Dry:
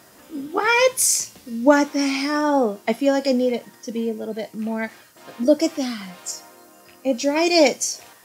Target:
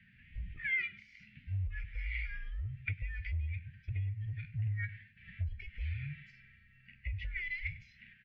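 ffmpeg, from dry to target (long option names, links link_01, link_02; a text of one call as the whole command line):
ffmpeg -i in.wav -filter_complex "[0:a]afftfilt=real='real(if(between(b,1,1008),(2*floor((b-1)/24)+1)*24-b,b),0)':imag='imag(if(between(b,1,1008),(2*floor((b-1)/24)+1)*24-b,b),0)*if(between(b,1,1008),-1,1)':win_size=2048:overlap=0.75,adynamicequalizer=threshold=0.0126:dfrequency=270:dqfactor=3.8:tfrequency=270:tqfactor=3.8:attack=5:release=100:ratio=0.375:range=3:mode=boostabove:tftype=bell,alimiter=limit=-10.5dB:level=0:latency=1:release=156,asuperstop=centerf=920:order=12:qfactor=0.56,asplit=2[link_01][link_02];[link_02]adelay=97,lowpass=frequency=840:poles=1,volume=-13dB,asplit=2[link_03][link_04];[link_04]adelay=97,lowpass=frequency=840:poles=1,volume=0.22,asplit=2[link_05][link_06];[link_06]adelay=97,lowpass=frequency=840:poles=1,volume=0.22[link_07];[link_01][link_03][link_05][link_07]amix=inputs=4:normalize=0,acompressor=threshold=-27dB:ratio=4,equalizer=frequency=210:width_type=o:width=2.6:gain=-4.5,highpass=frequency=270:width_type=q:width=0.5412,highpass=frequency=270:width_type=q:width=1.307,lowpass=frequency=2600:width_type=q:width=0.5176,lowpass=frequency=2600:width_type=q:width=0.7071,lowpass=frequency=2600:width_type=q:width=1.932,afreqshift=-190" out.wav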